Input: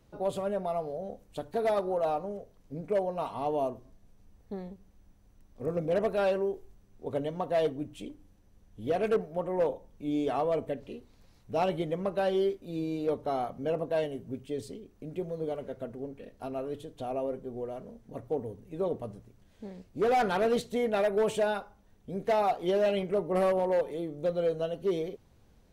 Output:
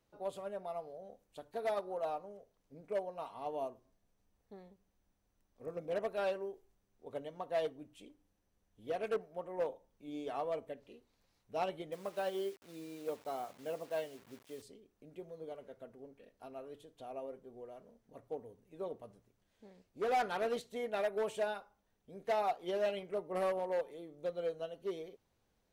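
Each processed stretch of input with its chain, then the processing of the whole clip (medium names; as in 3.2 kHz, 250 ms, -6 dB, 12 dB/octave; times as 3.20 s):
11.92–14.62 s: bass shelf 75 Hz -6.5 dB + word length cut 8-bit, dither none + high-pass 41 Hz
whole clip: bass shelf 290 Hz -10.5 dB; upward expansion 1.5:1, over -36 dBFS; trim -4 dB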